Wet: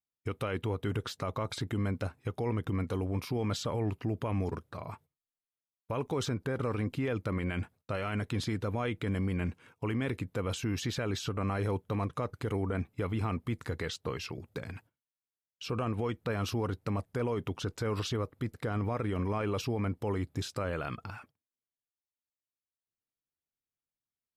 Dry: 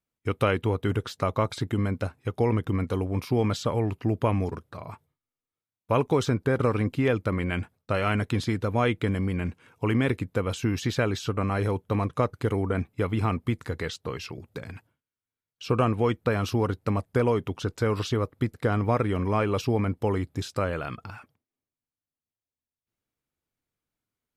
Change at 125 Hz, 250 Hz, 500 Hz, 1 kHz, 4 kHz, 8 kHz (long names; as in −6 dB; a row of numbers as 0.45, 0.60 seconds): −6.5, −7.0, −8.0, −8.0, −3.5, −2.5 decibels